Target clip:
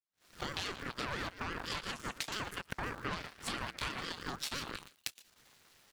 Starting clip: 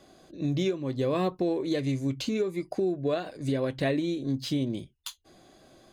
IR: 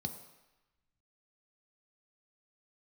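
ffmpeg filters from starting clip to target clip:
-af "aeval=exprs='val(0)+0.5*0.00944*sgn(val(0))':c=same,aecho=1:1:117:0.316,dynaudnorm=f=120:g=3:m=9.5dB,agate=range=-33dB:threshold=-34dB:ratio=3:detection=peak,aeval=exprs='0.473*(cos(1*acos(clip(val(0)/0.473,-1,1)))-cos(1*PI/2))+0.0422*(cos(6*acos(clip(val(0)/0.473,-1,1)))-cos(6*PI/2))+0.0668*(cos(7*acos(clip(val(0)/0.473,-1,1)))-cos(7*PI/2))':c=same,highpass=890,acompressor=threshold=-38dB:ratio=6,aeval=exprs='val(0)*sin(2*PI*640*n/s+640*0.35/5.9*sin(2*PI*5.9*n/s))':c=same,volume=4dB"

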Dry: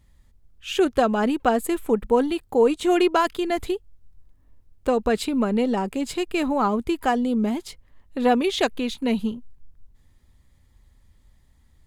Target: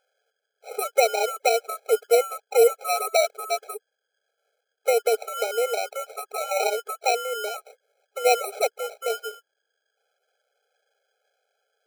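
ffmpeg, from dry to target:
-af "aemphasis=mode=reproduction:type=75fm,acrusher=samples=27:mix=1:aa=0.000001,afftfilt=real='re*eq(mod(floor(b*sr/1024/430),2),1)':imag='im*eq(mod(floor(b*sr/1024/430),2),1)':win_size=1024:overlap=0.75,volume=2dB"

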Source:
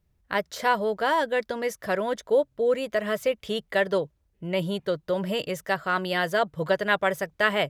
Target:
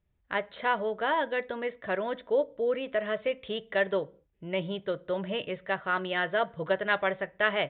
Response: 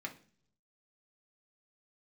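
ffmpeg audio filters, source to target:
-filter_complex "[0:a]aresample=8000,aresample=44100,asplit=2[a][b];[1:a]atrim=start_sample=2205,afade=t=out:st=0.29:d=0.01,atrim=end_sample=13230,lowshelf=f=150:g=-12[c];[b][c]afir=irnorm=-1:irlink=0,volume=-7.5dB[d];[a][d]amix=inputs=2:normalize=0,volume=-5.5dB"

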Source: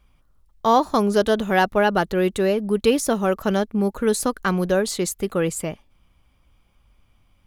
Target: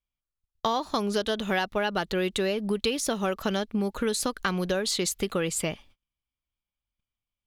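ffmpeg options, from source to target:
-af "agate=range=-33dB:threshold=-50dB:ratio=16:detection=peak,equalizer=f=3.6k:t=o:w=1.8:g=10,acompressor=threshold=-24dB:ratio=6"

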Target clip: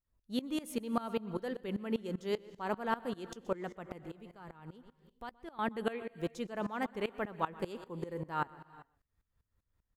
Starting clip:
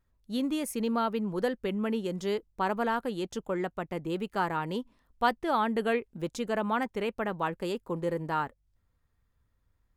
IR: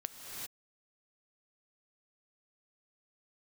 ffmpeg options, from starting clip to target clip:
-filter_complex "[0:a]asettb=1/sr,asplit=3[a][b][c];[a]atrim=end=4.044[d];[b]atrim=start=4.04:end=5.59,asetpts=PTS-STARTPTS,afade=t=in:d=0.004:c=qsin,afade=t=out:st=1.546:d=0.004:c=qsin,acrossover=split=120[e][f];[f]acompressor=threshold=-47dB:ratio=2.5[g];[e][g]amix=inputs=2:normalize=0[h];[c]atrim=start=5.586[i];[d][h]acrossfade=d=0.004:c1=hsin:c2=qsin[j];[j][i]acrossfade=d=0.004:c1=qsin:c2=hsin,asplit=2[k][l];[l]adelay=122.4,volume=-16dB,highshelf=f=4k:g=-2.76[m];[k][m]amix=inputs=2:normalize=0,asplit=2[n][o];[1:a]atrim=start_sample=2205[p];[o][p]afir=irnorm=-1:irlink=0,volume=-12dB[q];[n][q]amix=inputs=2:normalize=0,aeval=exprs='val(0)*pow(10,-20*if(lt(mod(-5.1*n/s,1),2*abs(-5.1)/1000),1-mod(-5.1*n/s,1)/(2*abs(-5.1)/1000),(mod(-5.1*n/s,1)-2*abs(-5.1)/1000)/(1-2*abs(-5.1)/1000))/20)':c=same,volume=-1.5dB"

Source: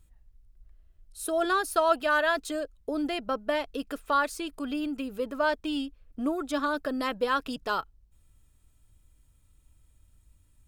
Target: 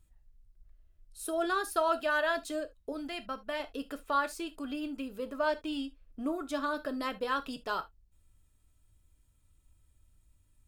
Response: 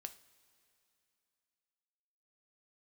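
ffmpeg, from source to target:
-filter_complex "[0:a]asettb=1/sr,asplit=3[a][b][c];[a]atrim=end=2.924[d];[b]atrim=start=2.92:end=3.6,asetpts=PTS-STARTPTS,afade=t=in:d=0.004:c=qsin,afade=t=out:st=0.676:d=0.004:c=qsin,equalizer=f=440:t=o:w=1.4:g=-8[e];[c]atrim=start=3.596[f];[d][e]acrossfade=d=0.004:c1=hsin:c2=qsin[g];[g][f]acrossfade=d=0.004:c1=qsin:c2=hsin[h];[1:a]atrim=start_sample=2205,atrim=end_sample=3528[i];[h][i]afir=irnorm=-1:irlink=0"

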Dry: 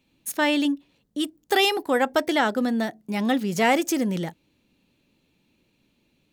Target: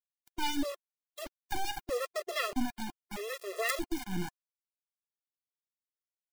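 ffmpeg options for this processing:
-filter_complex "[0:a]acrossover=split=620[a][b];[a]aeval=exprs='val(0)*(1-1/2+1/2*cos(2*PI*3.1*n/s))':c=same[c];[b]aeval=exprs='val(0)*(1-1/2-1/2*cos(2*PI*3.1*n/s))':c=same[d];[c][d]amix=inputs=2:normalize=0,acrusher=bits=3:dc=4:mix=0:aa=0.000001,afftfilt=real='re*gt(sin(2*PI*0.79*pts/sr)*(1-2*mod(floor(b*sr/1024/350),2)),0)':imag='im*gt(sin(2*PI*0.79*pts/sr)*(1-2*mod(floor(b*sr/1024/350),2)),0)':win_size=1024:overlap=0.75"

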